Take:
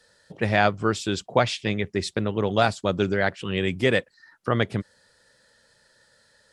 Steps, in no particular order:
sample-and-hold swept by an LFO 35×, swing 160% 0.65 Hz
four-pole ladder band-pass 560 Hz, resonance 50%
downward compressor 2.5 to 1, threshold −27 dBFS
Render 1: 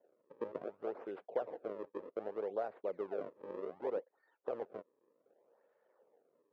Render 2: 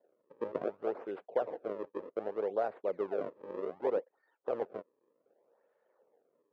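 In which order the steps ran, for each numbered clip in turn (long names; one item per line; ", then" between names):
downward compressor, then sample-and-hold swept by an LFO, then four-pole ladder band-pass
sample-and-hold swept by an LFO, then four-pole ladder band-pass, then downward compressor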